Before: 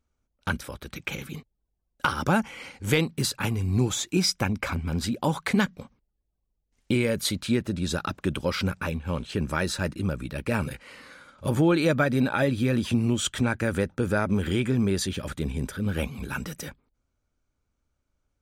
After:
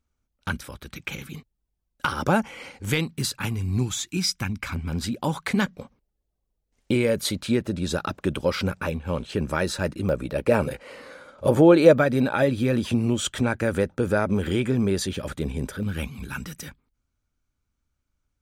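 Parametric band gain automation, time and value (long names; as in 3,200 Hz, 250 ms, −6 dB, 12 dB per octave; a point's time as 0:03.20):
parametric band 540 Hz 1.4 octaves
−3.5 dB
from 0:02.12 +4.5 dB
from 0:02.85 −5 dB
from 0:03.83 −13 dB
from 0:04.73 −1.5 dB
from 0:05.62 +5 dB
from 0:10.09 +12 dB
from 0:11.98 +4.5 dB
from 0:15.83 −7 dB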